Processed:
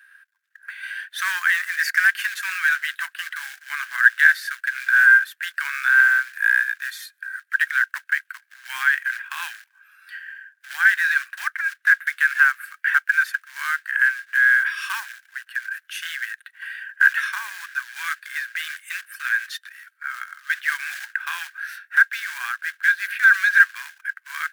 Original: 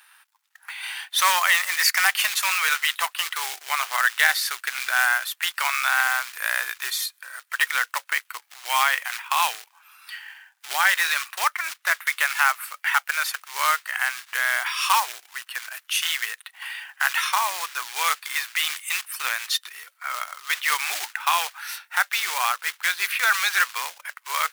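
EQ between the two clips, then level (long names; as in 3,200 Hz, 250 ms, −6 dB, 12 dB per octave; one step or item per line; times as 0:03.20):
high-pass with resonance 1,600 Hz, resonance Q 16
−11.5 dB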